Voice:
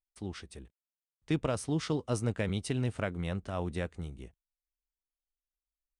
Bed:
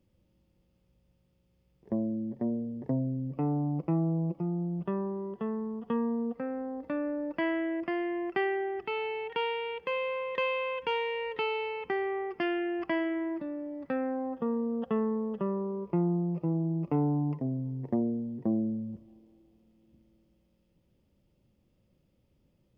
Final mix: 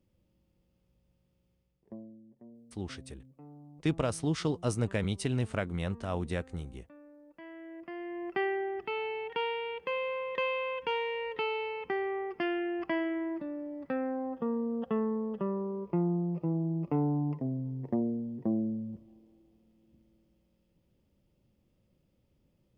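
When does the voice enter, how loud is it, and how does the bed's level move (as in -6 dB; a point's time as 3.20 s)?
2.55 s, +1.0 dB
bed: 1.50 s -2.5 dB
2.23 s -22 dB
7.26 s -22 dB
8.41 s -1.5 dB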